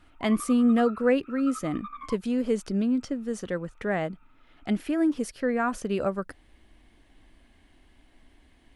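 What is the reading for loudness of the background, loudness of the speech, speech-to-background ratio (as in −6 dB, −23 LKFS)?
−42.5 LKFS, −27.0 LKFS, 15.5 dB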